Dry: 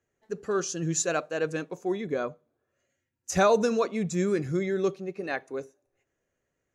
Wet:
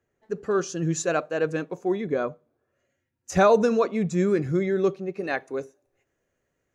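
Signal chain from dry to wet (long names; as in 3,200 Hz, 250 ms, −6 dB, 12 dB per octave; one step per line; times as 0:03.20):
high-shelf EQ 3,500 Hz −9.5 dB, from 0:05.14 −2.5 dB
level +4 dB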